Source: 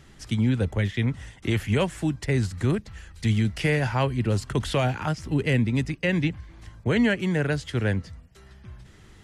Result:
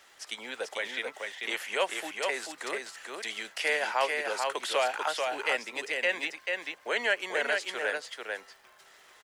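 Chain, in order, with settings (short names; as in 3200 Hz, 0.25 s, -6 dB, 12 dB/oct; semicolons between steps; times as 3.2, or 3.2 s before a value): HPF 540 Hz 24 dB/oct; crackle 350/s -52 dBFS; echo 0.44 s -4 dB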